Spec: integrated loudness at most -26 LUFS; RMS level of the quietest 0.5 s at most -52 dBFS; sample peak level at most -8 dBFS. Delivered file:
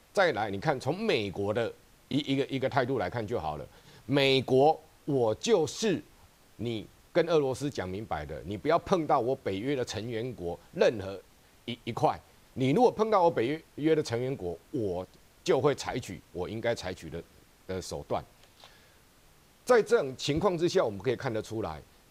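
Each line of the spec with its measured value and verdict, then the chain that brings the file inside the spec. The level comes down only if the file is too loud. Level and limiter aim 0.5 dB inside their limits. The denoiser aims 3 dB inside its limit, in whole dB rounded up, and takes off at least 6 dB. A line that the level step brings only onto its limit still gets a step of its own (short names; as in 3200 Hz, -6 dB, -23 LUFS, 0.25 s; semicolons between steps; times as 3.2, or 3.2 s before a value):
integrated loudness -29.5 LUFS: OK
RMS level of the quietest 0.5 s -60 dBFS: OK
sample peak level -10.0 dBFS: OK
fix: none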